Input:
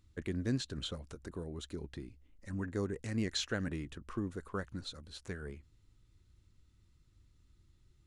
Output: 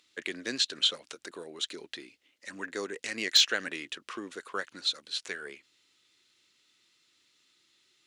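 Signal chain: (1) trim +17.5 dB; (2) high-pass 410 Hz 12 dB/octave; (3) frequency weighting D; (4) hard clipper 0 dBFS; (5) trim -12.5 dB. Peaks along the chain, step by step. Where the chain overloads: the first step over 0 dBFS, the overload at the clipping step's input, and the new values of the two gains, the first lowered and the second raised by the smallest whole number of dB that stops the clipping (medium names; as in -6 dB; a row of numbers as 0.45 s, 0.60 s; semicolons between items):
-3.0 dBFS, -5.0 dBFS, +4.5 dBFS, 0.0 dBFS, -12.5 dBFS; step 3, 4.5 dB; step 1 +12.5 dB, step 5 -7.5 dB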